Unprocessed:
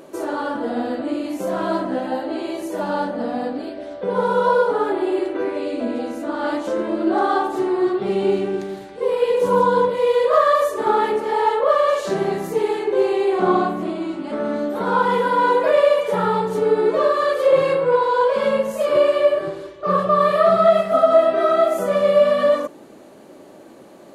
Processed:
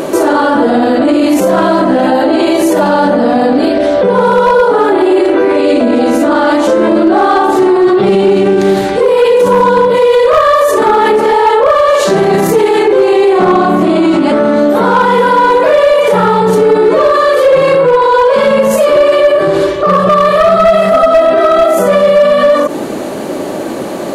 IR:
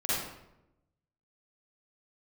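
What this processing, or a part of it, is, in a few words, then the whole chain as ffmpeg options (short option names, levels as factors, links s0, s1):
loud club master: -af "acompressor=threshold=0.0794:ratio=2,asoftclip=type=hard:threshold=0.158,alimiter=level_in=21.1:limit=0.891:release=50:level=0:latency=1,volume=0.891"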